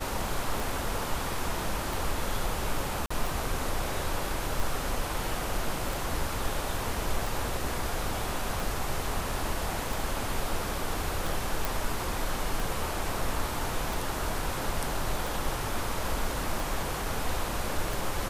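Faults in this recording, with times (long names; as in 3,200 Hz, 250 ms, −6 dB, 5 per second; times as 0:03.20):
scratch tick 45 rpm
0:03.06–0:03.10: drop-out 45 ms
0:11.65: click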